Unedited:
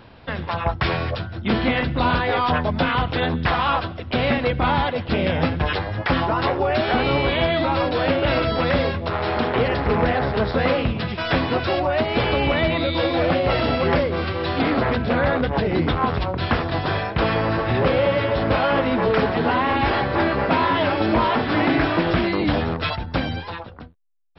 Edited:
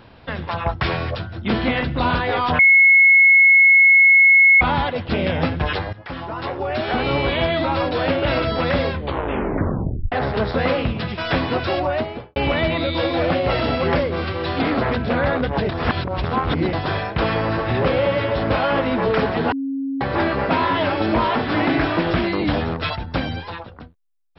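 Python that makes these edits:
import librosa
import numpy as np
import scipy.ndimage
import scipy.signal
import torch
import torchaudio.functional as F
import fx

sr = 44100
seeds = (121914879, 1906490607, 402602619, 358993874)

y = fx.studio_fade_out(x, sr, start_s=11.86, length_s=0.5)
y = fx.edit(y, sr, fx.bleep(start_s=2.59, length_s=2.02, hz=2180.0, db=-8.0),
    fx.fade_in_from(start_s=5.93, length_s=1.27, floor_db=-16.5),
    fx.tape_stop(start_s=8.9, length_s=1.22),
    fx.reverse_span(start_s=15.69, length_s=1.04),
    fx.bleep(start_s=19.52, length_s=0.49, hz=272.0, db=-21.5), tone=tone)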